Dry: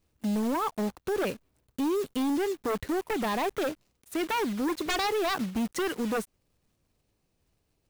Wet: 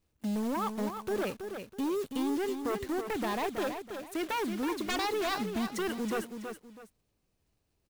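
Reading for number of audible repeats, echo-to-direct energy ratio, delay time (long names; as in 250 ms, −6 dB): 2, −7.0 dB, 325 ms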